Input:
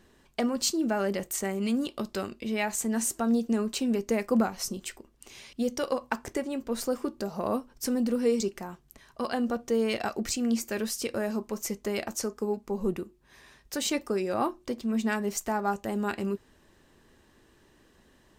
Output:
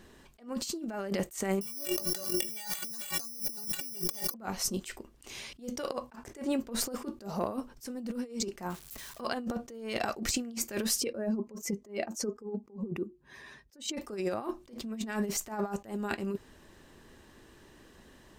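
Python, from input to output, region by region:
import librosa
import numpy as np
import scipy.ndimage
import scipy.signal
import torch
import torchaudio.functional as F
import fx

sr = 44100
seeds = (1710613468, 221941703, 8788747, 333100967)

y = fx.chain(x, sr, fx.resample_bad(factor=8, down='none', up='zero_stuff'),
    fx.stiff_resonator(f0_hz=170.0, decay_s=0.2, stiffness=0.03),
    fx.env_flatten(amount_pct=70), at=(1.61, 4.34))
y = fx.chain(y, sr, fx.crossing_spikes(level_db=-38.0),
    fx.high_shelf(hz=7100.0, db=-6.5), at=(8.7, 9.21))
y = fx.chain(y, sr, fx.spec_expand(power=1.5),
    fx.highpass(hz=92.0, slope=12), at=(11.0, 13.97))
y = fx.over_compress(y, sr, threshold_db=-32.0, ratio=-0.5)
y = fx.attack_slew(y, sr, db_per_s=190.0)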